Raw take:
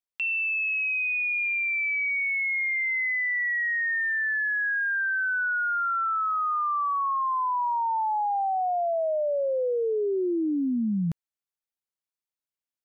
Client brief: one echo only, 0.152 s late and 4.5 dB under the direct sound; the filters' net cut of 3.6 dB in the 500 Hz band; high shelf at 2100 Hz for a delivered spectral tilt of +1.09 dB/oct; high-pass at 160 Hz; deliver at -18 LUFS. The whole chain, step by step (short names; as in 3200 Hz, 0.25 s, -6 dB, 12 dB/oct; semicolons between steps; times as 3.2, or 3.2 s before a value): HPF 160 Hz; bell 500 Hz -4 dB; high shelf 2100 Hz -6.5 dB; echo 0.152 s -4.5 dB; gain +9 dB